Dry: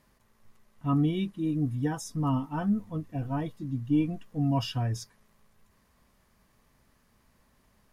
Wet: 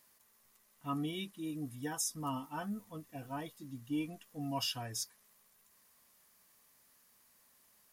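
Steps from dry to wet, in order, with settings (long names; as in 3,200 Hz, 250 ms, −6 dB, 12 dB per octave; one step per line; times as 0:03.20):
RIAA equalisation recording
level −5.5 dB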